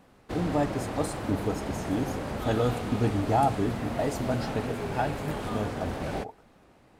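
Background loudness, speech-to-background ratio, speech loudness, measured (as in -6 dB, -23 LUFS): -34.0 LUFS, 3.0 dB, -31.0 LUFS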